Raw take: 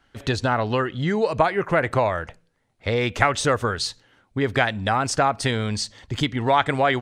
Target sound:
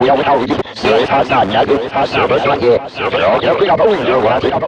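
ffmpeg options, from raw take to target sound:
ffmpeg -i in.wav -filter_complex "[0:a]areverse,atempo=1.5,asplit=2[link_01][link_02];[link_02]highpass=frequency=720:poles=1,volume=31dB,asoftclip=type=tanh:threshold=-1.5dB[link_03];[link_01][link_03]amix=inputs=2:normalize=0,lowpass=frequency=2000:poles=1,volume=-6dB,lowshelf=frequency=110:gain=-8.5,acrossover=split=270|1200|1900[link_04][link_05][link_06][link_07];[link_04]aeval=exprs='(mod(9.44*val(0)+1,2)-1)/9.44':channel_layout=same[link_08];[link_06]asetrate=83250,aresample=44100,atempo=0.529732[link_09];[link_07]acompressor=threshold=-32dB:ratio=4[link_10];[link_08][link_05][link_09][link_10]amix=inputs=4:normalize=0,lowpass=3900,aecho=1:1:828|1656|2484|3312:0.398|0.119|0.0358|0.0107,alimiter=limit=-9dB:level=0:latency=1:release=261,highpass=47,adynamicequalizer=threshold=0.0224:dfrequency=1600:dqfactor=0.7:tfrequency=1600:tqfactor=0.7:attack=5:release=100:ratio=0.375:range=3:mode=cutabove:tftype=highshelf,volume=7.5dB" out.wav

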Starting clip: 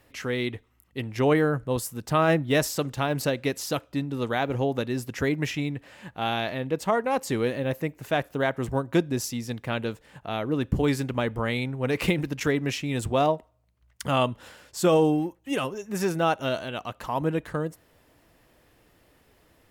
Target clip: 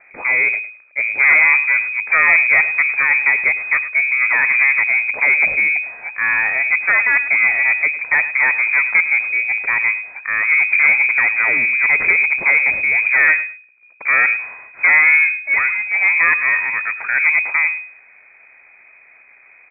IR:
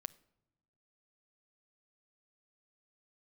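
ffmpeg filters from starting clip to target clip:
-filter_complex "[0:a]aeval=exprs='if(lt(val(0),0),0.447*val(0),val(0))':channel_layout=same,tiltshelf=frequency=1500:gain=4.5,aresample=11025,asoftclip=type=tanh:threshold=-19.5dB,aresample=44100,aecho=1:1:105|210:0.178|0.0338,asplit=2[link_01][link_02];[1:a]atrim=start_sample=2205,atrim=end_sample=3528[link_03];[link_02][link_03]afir=irnorm=-1:irlink=0,volume=7.5dB[link_04];[link_01][link_04]amix=inputs=2:normalize=0,lowpass=frequency=2100:width_type=q:width=0.5098,lowpass=frequency=2100:width_type=q:width=0.6013,lowpass=frequency=2100:width_type=q:width=0.9,lowpass=frequency=2100:width_type=q:width=2.563,afreqshift=-2500,volume=3.5dB"

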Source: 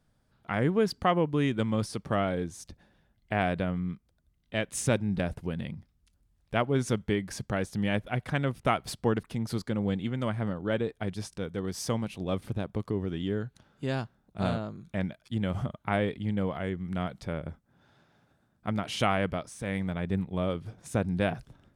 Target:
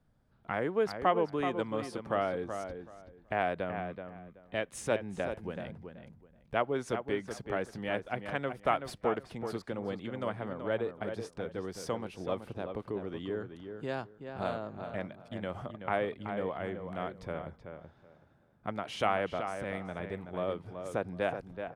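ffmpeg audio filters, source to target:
ffmpeg -i in.wav -filter_complex "[0:a]highshelf=frequency=2600:gain=-11,acrossover=split=350|2900[link_01][link_02][link_03];[link_01]acompressor=threshold=-44dB:ratio=6[link_04];[link_04][link_02][link_03]amix=inputs=3:normalize=0,asplit=2[link_05][link_06];[link_06]adelay=378,lowpass=frequency=2800:poles=1,volume=-7.5dB,asplit=2[link_07][link_08];[link_08]adelay=378,lowpass=frequency=2800:poles=1,volume=0.21,asplit=2[link_09][link_10];[link_10]adelay=378,lowpass=frequency=2800:poles=1,volume=0.21[link_11];[link_05][link_07][link_09][link_11]amix=inputs=4:normalize=0" out.wav

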